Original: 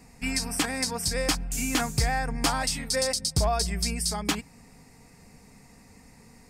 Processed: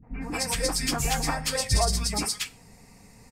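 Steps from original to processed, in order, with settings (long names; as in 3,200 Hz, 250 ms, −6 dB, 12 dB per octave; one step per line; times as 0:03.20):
three-band delay without the direct sound lows, mids, highs 70/440 ms, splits 270/1,600 Hz
dense smooth reverb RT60 0.62 s, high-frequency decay 0.9×, DRR 11.5 dB
time stretch by phase vocoder 0.51×
level +5 dB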